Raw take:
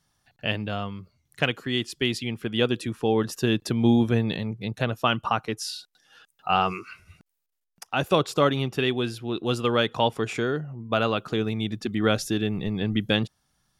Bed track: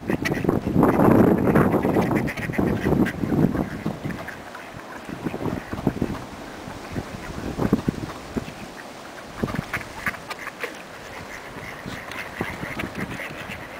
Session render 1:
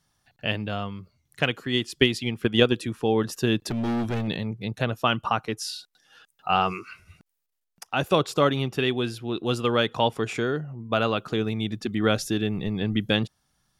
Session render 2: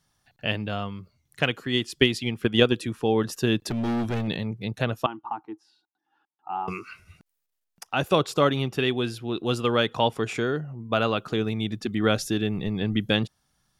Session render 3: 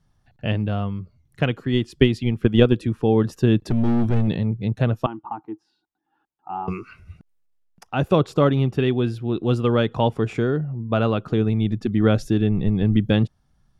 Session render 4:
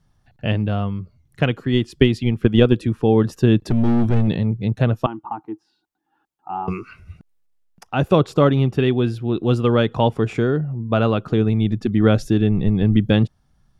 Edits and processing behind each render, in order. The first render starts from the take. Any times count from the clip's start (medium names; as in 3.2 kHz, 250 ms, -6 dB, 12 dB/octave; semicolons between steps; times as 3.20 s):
1.70–2.77 s: transient shaper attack +8 dB, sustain 0 dB; 3.66–4.28 s: hard clipper -24 dBFS
5.06–6.68 s: two resonant band-passes 530 Hz, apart 1.4 oct
tilt EQ -3 dB/octave
trim +2.5 dB; peak limiter -1 dBFS, peak gain reduction 2 dB